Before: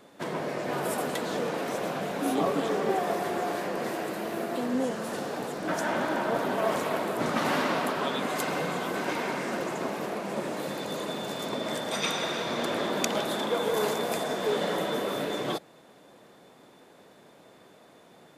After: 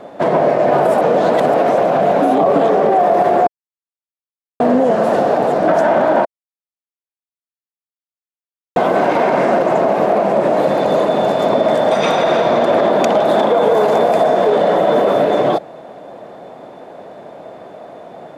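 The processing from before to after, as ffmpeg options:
ffmpeg -i in.wav -filter_complex "[0:a]asplit=7[link_01][link_02][link_03][link_04][link_05][link_06][link_07];[link_01]atrim=end=1.012[link_08];[link_02]atrim=start=1.008:end=1.542,asetpts=PTS-STARTPTS,areverse[link_09];[link_03]atrim=start=1.538:end=3.47,asetpts=PTS-STARTPTS,afade=type=out:start_time=1.928:duration=0.004:curve=hsin[link_10];[link_04]atrim=start=3.47:end=4.6,asetpts=PTS-STARTPTS,volume=0[link_11];[link_05]atrim=start=4.6:end=6.25,asetpts=PTS-STARTPTS,afade=type=in:duration=0.004:curve=hsin,afade=type=out:start_time=1.646:duration=0.004:curve=hsin[link_12];[link_06]atrim=start=6.25:end=8.76,asetpts=PTS-STARTPTS,volume=0[link_13];[link_07]atrim=start=8.76,asetpts=PTS-STARTPTS,afade=type=in:duration=0.004:curve=hsin[link_14];[link_08][link_09]acrossfade=duration=0.004:curve1=hsin:curve2=hsin[link_15];[link_10][link_11][link_12][link_13][link_14]concat=n=5:v=0:a=1[link_16];[link_15][link_16]acrossfade=duration=0.004:curve1=hsin:curve2=hsin,lowpass=frequency=1600:poles=1,equalizer=frequency=660:width_type=o:width=0.78:gain=11,alimiter=level_in=19dB:limit=-1dB:release=50:level=0:latency=1,volume=-4dB" out.wav

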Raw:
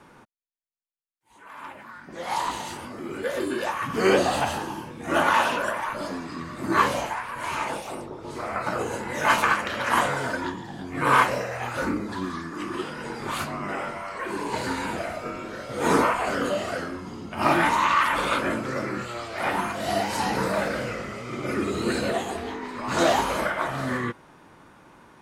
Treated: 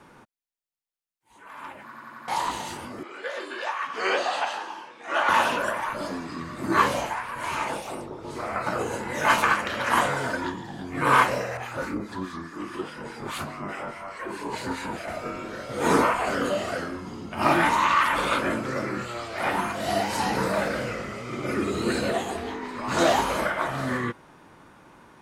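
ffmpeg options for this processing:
ffmpeg -i in.wav -filter_complex "[0:a]asettb=1/sr,asplit=3[link_01][link_02][link_03];[link_01]atrim=end=3.034[link_04];[link_02]atrim=start=3.03:end=5.29,asetpts=PTS-STARTPTS,afade=type=in:duration=0.004:curve=qsin,afade=type=out:start_time=2.256:duration=0.004:curve=qsin,highpass=690,lowpass=5200[link_05];[link_03]atrim=start=5.286[link_06];[link_04][link_05]acrossfade=duration=0.004:curve1=hsin:curve2=qsin[link_07];[link_07][link_06]acrossfade=duration=0.004:curve1=qsin:curve2=hsin,asettb=1/sr,asplit=3[link_08][link_09][link_10];[link_08]atrim=end=11.574[link_11];[link_09]atrim=start=11.57:end=15.08,asetpts=PTS-STARTPTS,afade=type=in:duration=0.004:curve=qsin,afade=type=out:start_time=3.506:duration=0.004:curve=qsin,acrossover=split=1400[link_12][link_13];[link_12]aeval=exprs='val(0)*(1-0.7/2+0.7/2*cos(2*PI*4.8*n/s))':channel_layout=same[link_14];[link_13]aeval=exprs='val(0)*(1-0.7/2-0.7/2*cos(2*PI*4.8*n/s))':channel_layout=same[link_15];[link_14][link_15]amix=inputs=2:normalize=0[link_16];[link_10]atrim=start=15.076[link_17];[link_11][link_16]acrossfade=duration=0.004:curve1=hsin:curve2=qsin[link_18];[link_18][link_17]acrossfade=duration=0.004:curve1=qsin:curve2=hsin,asplit=6[link_19][link_20][link_21][link_22][link_23][link_24];[link_19]atrim=end=1.922[link_25];[link_20]atrim=start=1.828:end=1.922[link_26];[link_21]atrim=start=1.828:end=1.922[link_27];[link_22]atrim=start=1.828:end=1.922[link_28];[link_23]atrim=start=1.828:end=1.922[link_29];[link_24]atrim=start=2.278[link_30];[link_25][link_26]acrossfade=duration=0.004:curve1=hsin:curve2=hsin[link_31];[link_31][link_27]acrossfade=duration=0.004:curve1=hsin:curve2=hsin[link_32];[link_32][link_28]acrossfade=duration=0.004:curve1=hsin:curve2=hsin[link_33];[link_33][link_29]acrossfade=duration=0.004:curve1=hsin:curve2=hsin[link_34];[link_34][link_30]acrossfade=duration=0.004:curve1=hsin:curve2=hsin" out.wav

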